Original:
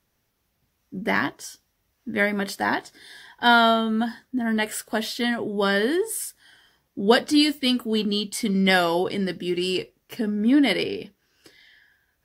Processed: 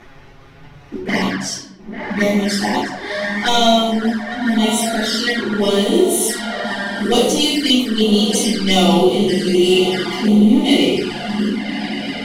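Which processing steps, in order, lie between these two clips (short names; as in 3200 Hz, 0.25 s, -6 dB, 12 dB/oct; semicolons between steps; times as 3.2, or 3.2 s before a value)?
on a send: diffused feedback echo 1.137 s, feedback 51%, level -10.5 dB; on the sum: upward compressor, threshold -22 dBFS; sample leveller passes 2; dynamic EQ 5700 Hz, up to +7 dB, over -35 dBFS, Q 0.98; in parallel at -2 dB: compressor 16:1, threshold -26 dBFS, peak gain reduction 18.5 dB; on the sum: high shelf 11000 Hz +11 dB; notches 60/120/180/240/300 Hz; shoebox room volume 290 m³, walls mixed, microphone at 3.4 m; low-pass opened by the level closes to 2200 Hz, open at 1 dBFS; envelope flanger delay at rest 9 ms, full sweep at -0.5 dBFS; gain -10 dB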